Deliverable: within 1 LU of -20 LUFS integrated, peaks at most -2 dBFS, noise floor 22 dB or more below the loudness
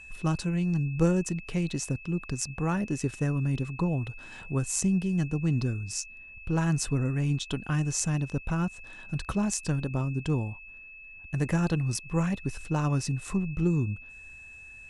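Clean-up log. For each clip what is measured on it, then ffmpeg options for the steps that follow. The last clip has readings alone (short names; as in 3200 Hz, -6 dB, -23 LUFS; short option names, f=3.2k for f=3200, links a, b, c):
steady tone 2600 Hz; tone level -45 dBFS; loudness -29.5 LUFS; peak -10.5 dBFS; loudness target -20.0 LUFS
-> -af "bandreject=f=2.6k:w=30"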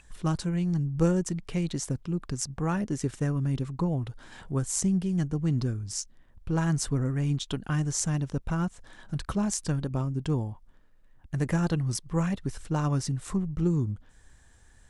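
steady tone none; loudness -29.5 LUFS; peak -10.5 dBFS; loudness target -20.0 LUFS
-> -af "volume=9.5dB,alimiter=limit=-2dB:level=0:latency=1"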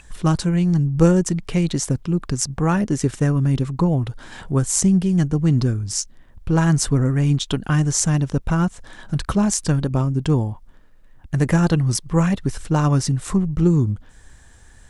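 loudness -20.0 LUFS; peak -2.0 dBFS; noise floor -47 dBFS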